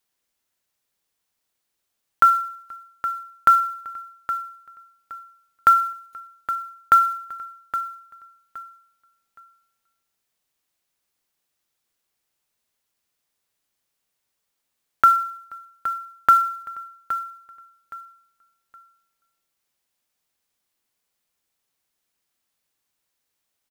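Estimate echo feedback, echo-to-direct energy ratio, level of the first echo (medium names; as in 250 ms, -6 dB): 26%, -11.5 dB, -12.0 dB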